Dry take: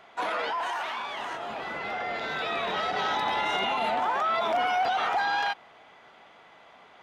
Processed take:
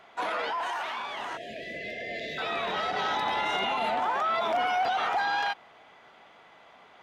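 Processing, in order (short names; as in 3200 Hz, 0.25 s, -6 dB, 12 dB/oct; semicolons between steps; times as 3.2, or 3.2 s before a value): 1.37–2.38 brick-wall FIR band-stop 710–1600 Hz; gain -1 dB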